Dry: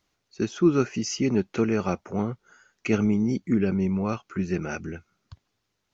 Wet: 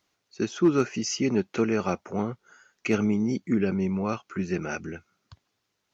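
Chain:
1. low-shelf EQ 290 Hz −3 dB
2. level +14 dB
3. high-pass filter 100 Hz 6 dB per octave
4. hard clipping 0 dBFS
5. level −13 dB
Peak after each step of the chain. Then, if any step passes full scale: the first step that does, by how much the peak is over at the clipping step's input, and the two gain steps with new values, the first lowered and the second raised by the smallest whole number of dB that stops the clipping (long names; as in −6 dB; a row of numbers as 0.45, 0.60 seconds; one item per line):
−10.5, +3.5, +3.0, 0.0, −13.0 dBFS
step 2, 3.0 dB
step 2 +11 dB, step 5 −10 dB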